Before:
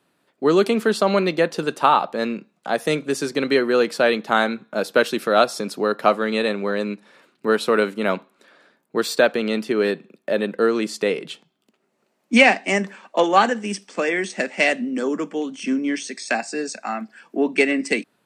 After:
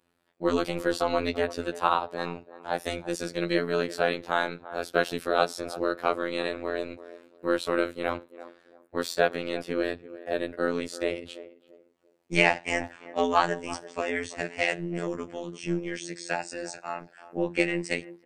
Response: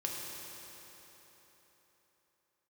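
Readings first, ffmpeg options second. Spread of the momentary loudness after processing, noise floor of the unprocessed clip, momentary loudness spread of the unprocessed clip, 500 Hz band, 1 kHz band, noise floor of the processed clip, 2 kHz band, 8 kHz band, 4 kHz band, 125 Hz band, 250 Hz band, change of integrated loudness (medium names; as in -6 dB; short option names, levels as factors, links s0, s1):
11 LU, -70 dBFS, 10 LU, -8.5 dB, -7.5 dB, -63 dBFS, -7.5 dB, -8.0 dB, -8.0 dB, -4.0 dB, -9.0 dB, -8.0 dB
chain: -filter_complex "[0:a]aeval=exprs='val(0)*sin(2*PI*81*n/s)':c=same,acrossover=split=230|5200[s0][s1][s2];[s0]aeval=exprs='clip(val(0),-1,0.0119)':c=same[s3];[s1]asplit=2[s4][s5];[s5]adelay=339,lowpass=f=880:p=1,volume=0.224,asplit=2[s6][s7];[s7]adelay=339,lowpass=f=880:p=1,volume=0.31,asplit=2[s8][s9];[s9]adelay=339,lowpass=f=880:p=1,volume=0.31[s10];[s4][s6][s8][s10]amix=inputs=4:normalize=0[s11];[s3][s11][s2]amix=inputs=3:normalize=0,afftfilt=real='hypot(re,im)*cos(PI*b)':imag='0':win_size=2048:overlap=0.75,volume=0.841"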